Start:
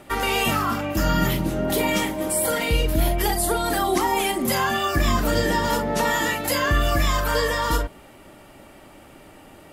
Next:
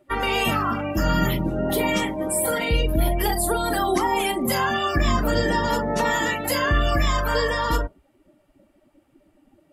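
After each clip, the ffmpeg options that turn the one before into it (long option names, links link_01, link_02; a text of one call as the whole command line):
ffmpeg -i in.wav -af "afftdn=noise_reduction=21:noise_floor=-34" out.wav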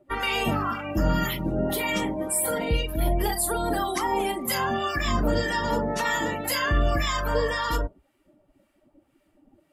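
ffmpeg -i in.wav -filter_complex "[0:a]acrossover=split=990[link_01][link_02];[link_01]aeval=exprs='val(0)*(1-0.7/2+0.7/2*cos(2*PI*1.9*n/s))':channel_layout=same[link_03];[link_02]aeval=exprs='val(0)*(1-0.7/2-0.7/2*cos(2*PI*1.9*n/s))':channel_layout=same[link_04];[link_03][link_04]amix=inputs=2:normalize=0" out.wav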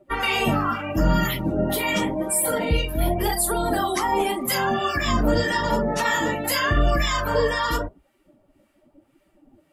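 ffmpeg -i in.wav -af "flanger=delay=5.1:depth=9:regen=-32:speed=0.86:shape=sinusoidal,volume=7dB" out.wav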